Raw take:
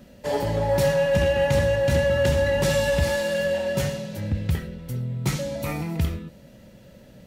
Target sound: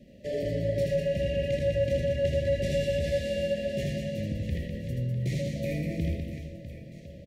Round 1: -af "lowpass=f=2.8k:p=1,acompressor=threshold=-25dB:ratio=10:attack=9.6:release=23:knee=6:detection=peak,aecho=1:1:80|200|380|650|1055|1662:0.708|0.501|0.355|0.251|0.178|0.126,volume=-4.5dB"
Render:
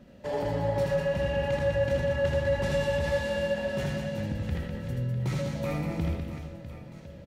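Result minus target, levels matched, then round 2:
1000 Hz band +19.0 dB
-af "lowpass=f=2.8k:p=1,acompressor=threshold=-25dB:ratio=10:attack=9.6:release=23:knee=6:detection=peak,asuperstop=centerf=1100:order=20:qfactor=1,aecho=1:1:80|200|380|650|1055|1662:0.708|0.501|0.355|0.251|0.178|0.126,volume=-4.5dB"

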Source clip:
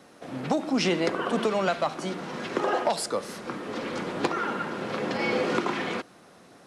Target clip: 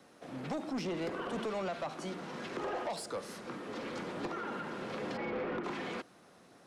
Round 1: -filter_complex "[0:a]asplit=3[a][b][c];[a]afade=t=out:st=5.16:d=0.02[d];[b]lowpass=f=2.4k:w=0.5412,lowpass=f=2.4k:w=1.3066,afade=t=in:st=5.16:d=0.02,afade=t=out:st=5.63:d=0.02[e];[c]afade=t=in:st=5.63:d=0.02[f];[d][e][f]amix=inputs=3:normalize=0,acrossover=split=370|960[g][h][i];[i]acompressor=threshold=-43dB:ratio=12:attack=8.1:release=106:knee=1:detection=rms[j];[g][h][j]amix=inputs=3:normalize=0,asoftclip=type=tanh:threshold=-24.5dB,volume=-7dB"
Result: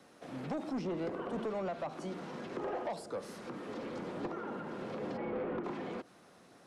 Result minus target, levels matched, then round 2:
compressor: peak gain reduction +9.5 dB
-filter_complex "[0:a]asplit=3[a][b][c];[a]afade=t=out:st=5.16:d=0.02[d];[b]lowpass=f=2.4k:w=0.5412,lowpass=f=2.4k:w=1.3066,afade=t=in:st=5.16:d=0.02,afade=t=out:st=5.63:d=0.02[e];[c]afade=t=in:st=5.63:d=0.02[f];[d][e][f]amix=inputs=3:normalize=0,acrossover=split=370|960[g][h][i];[i]acompressor=threshold=-32.5dB:ratio=12:attack=8.1:release=106:knee=1:detection=rms[j];[g][h][j]amix=inputs=3:normalize=0,asoftclip=type=tanh:threshold=-24.5dB,volume=-7dB"

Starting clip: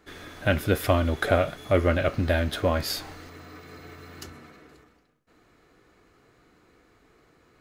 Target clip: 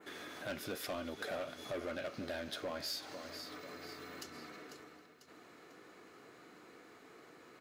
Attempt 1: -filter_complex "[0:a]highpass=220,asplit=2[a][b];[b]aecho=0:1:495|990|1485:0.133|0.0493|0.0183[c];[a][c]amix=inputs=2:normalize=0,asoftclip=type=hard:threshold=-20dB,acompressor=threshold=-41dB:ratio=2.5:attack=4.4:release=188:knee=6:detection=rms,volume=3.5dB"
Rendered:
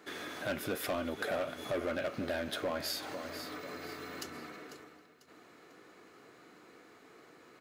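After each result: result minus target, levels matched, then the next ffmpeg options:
compressor: peak gain reduction -6 dB; 4000 Hz band -2.5 dB
-filter_complex "[0:a]highpass=220,asplit=2[a][b];[b]aecho=0:1:495|990|1485:0.133|0.0493|0.0183[c];[a][c]amix=inputs=2:normalize=0,asoftclip=type=hard:threshold=-20dB,acompressor=threshold=-51dB:ratio=2.5:attack=4.4:release=188:knee=6:detection=rms,volume=3.5dB"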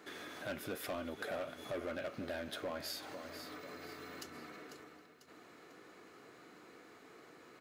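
4000 Hz band -2.5 dB
-filter_complex "[0:a]highpass=220,adynamicequalizer=threshold=0.00316:dfrequency=5100:dqfactor=1.2:tfrequency=5100:tqfactor=1.2:attack=5:release=100:ratio=0.375:range=3.5:mode=boostabove:tftype=bell,asplit=2[a][b];[b]aecho=0:1:495|990|1485:0.133|0.0493|0.0183[c];[a][c]amix=inputs=2:normalize=0,asoftclip=type=hard:threshold=-20dB,acompressor=threshold=-51dB:ratio=2.5:attack=4.4:release=188:knee=6:detection=rms,volume=3.5dB"

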